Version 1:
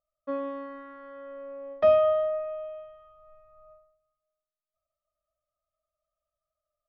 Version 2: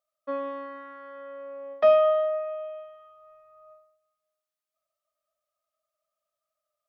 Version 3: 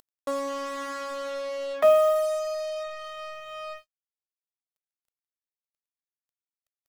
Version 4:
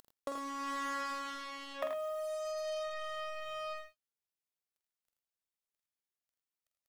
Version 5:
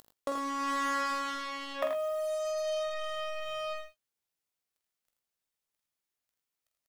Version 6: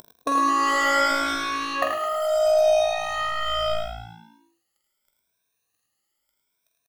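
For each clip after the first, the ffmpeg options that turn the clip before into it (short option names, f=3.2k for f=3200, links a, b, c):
-af "highpass=f=570:p=1,volume=4dB"
-af "acompressor=mode=upward:threshold=-25dB:ratio=2.5,acrusher=bits=5:mix=0:aa=0.5"
-filter_complex "[0:a]acompressor=threshold=-34dB:ratio=12,asplit=2[a][b];[b]aecho=0:1:46|82|104:0.422|0.422|0.299[c];[a][c]amix=inputs=2:normalize=0,volume=-2.5dB"
-filter_complex "[0:a]asplit=2[a][b];[b]adelay=18,volume=-11dB[c];[a][c]amix=inputs=2:normalize=0,volume=4.5dB"
-filter_complex "[0:a]afftfilt=real='re*pow(10,17/40*sin(2*PI*(1.6*log(max(b,1)*sr/1024/100)/log(2)-(0.76)*(pts-256)/sr)))':imag='im*pow(10,17/40*sin(2*PI*(1.6*log(max(b,1)*sr/1024/100)/log(2)-(0.76)*(pts-256)/sr)))':win_size=1024:overlap=0.75,asplit=7[a][b][c][d][e][f][g];[b]adelay=106,afreqshift=56,volume=-9.5dB[h];[c]adelay=212,afreqshift=112,volume=-15.2dB[i];[d]adelay=318,afreqshift=168,volume=-20.9dB[j];[e]adelay=424,afreqshift=224,volume=-26.5dB[k];[f]adelay=530,afreqshift=280,volume=-32.2dB[l];[g]adelay=636,afreqshift=336,volume=-37.9dB[m];[a][h][i][j][k][l][m]amix=inputs=7:normalize=0,volume=7.5dB"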